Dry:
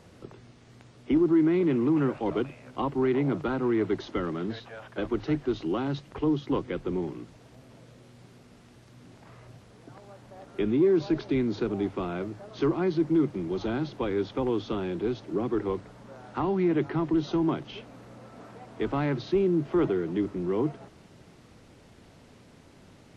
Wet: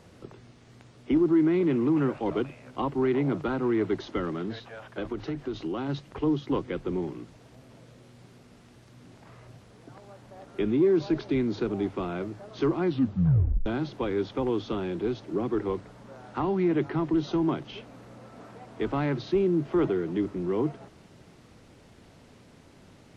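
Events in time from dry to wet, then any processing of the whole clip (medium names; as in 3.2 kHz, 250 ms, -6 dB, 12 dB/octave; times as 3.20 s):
4.34–5.89 s: compression, threshold -27 dBFS
12.84 s: tape stop 0.82 s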